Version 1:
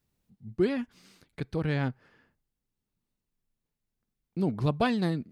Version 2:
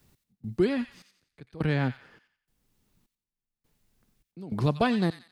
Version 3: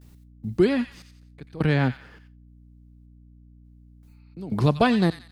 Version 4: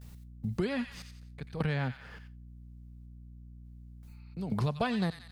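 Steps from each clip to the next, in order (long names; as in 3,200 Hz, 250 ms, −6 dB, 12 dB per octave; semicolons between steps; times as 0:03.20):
gate pattern "x..xxxx....xxx" 103 BPM −24 dB; delay with a high-pass on its return 89 ms, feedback 32%, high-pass 1,800 Hz, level −9 dB; multiband upward and downward compressor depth 40%; level +2.5 dB
noise gate with hold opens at −57 dBFS; healed spectral selection 0:04.10–0:04.31, 820–5,900 Hz after; mains hum 60 Hz, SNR 24 dB; level +5 dB
parametric band 320 Hz −10.5 dB 0.55 octaves; downward compressor 3 to 1, threshold −33 dBFS, peak gain reduction 13 dB; level +2 dB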